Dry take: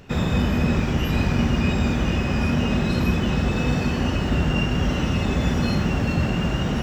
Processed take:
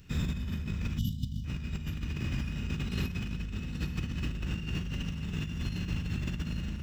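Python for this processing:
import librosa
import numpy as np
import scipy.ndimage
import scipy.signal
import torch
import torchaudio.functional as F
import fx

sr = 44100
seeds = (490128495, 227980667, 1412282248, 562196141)

y = fx.high_shelf(x, sr, hz=9600.0, db=6.0)
y = y + 10.0 ** (-4.0 / 20.0) * np.pad(y, (int(826 * sr / 1000.0), 0))[:len(y)]
y = fx.rev_spring(y, sr, rt60_s=3.1, pass_ms=(39, 57), chirp_ms=65, drr_db=-0.5)
y = fx.spec_box(y, sr, start_s=0.98, length_s=0.47, low_hz=290.0, high_hz=2900.0, gain_db=-29)
y = fx.over_compress(y, sr, threshold_db=-20.0, ratio=-0.5)
y = fx.tone_stack(y, sr, knobs='6-0-2')
y = y * librosa.db_to_amplitude(3.0)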